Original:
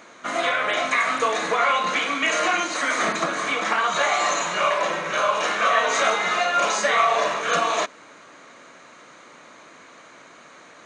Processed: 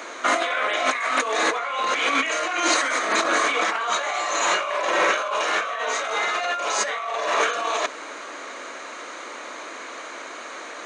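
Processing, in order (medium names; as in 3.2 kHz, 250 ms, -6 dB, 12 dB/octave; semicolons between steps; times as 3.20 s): high-pass 290 Hz 24 dB/octave; compressor with a negative ratio -29 dBFS, ratio -1; trim +5 dB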